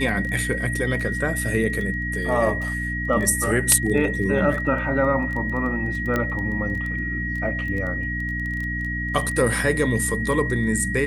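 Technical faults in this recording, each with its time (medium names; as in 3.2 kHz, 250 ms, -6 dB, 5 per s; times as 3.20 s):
crackle 12 per s -28 dBFS
hum 60 Hz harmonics 5 -29 dBFS
whine 1.9 kHz -27 dBFS
6.16 s: pop -10 dBFS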